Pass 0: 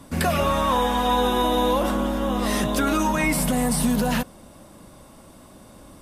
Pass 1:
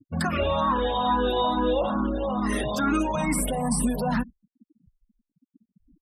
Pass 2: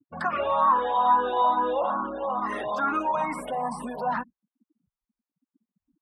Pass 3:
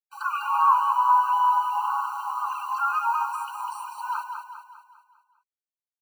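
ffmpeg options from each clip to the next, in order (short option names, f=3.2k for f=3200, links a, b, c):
-filter_complex "[0:a]aecho=1:1:87:0.1,afftfilt=real='re*gte(hypot(re,im),0.0398)':imag='im*gte(hypot(re,im),0.0398)':win_size=1024:overlap=0.75,asplit=2[a][b];[b]afreqshift=2.3[c];[a][c]amix=inputs=2:normalize=1"
-af "bandpass=f=1k:t=q:w=1.6:csg=0,volume=5dB"
-filter_complex "[0:a]acrusher=bits=7:mix=0:aa=0.000001,asplit=2[a][b];[b]aecho=0:1:200|400|600|800|1000|1200:0.501|0.241|0.115|0.0554|0.0266|0.0128[c];[a][c]amix=inputs=2:normalize=0,afftfilt=real='re*eq(mod(floor(b*sr/1024/780),2),1)':imag='im*eq(mod(floor(b*sr/1024/780),2),1)':win_size=1024:overlap=0.75,volume=1.5dB"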